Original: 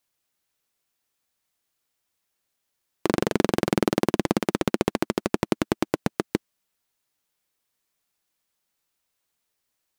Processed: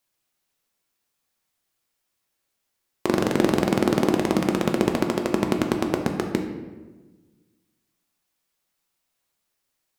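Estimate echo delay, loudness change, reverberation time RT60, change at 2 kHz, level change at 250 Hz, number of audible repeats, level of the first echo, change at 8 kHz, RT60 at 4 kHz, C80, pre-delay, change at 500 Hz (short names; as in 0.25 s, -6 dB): none, +2.5 dB, 1.3 s, +1.5 dB, +3.0 dB, none, none, +1.0 dB, 0.80 s, 8.5 dB, 4 ms, +2.5 dB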